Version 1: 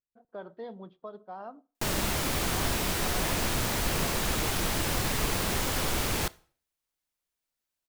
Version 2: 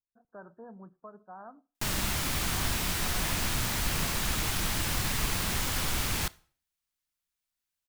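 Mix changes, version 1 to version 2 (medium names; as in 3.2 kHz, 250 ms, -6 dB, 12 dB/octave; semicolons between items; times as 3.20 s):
speech: add brick-wall FIR low-pass 1.8 kHz; master: add peaking EQ 470 Hz -8.5 dB 1.6 oct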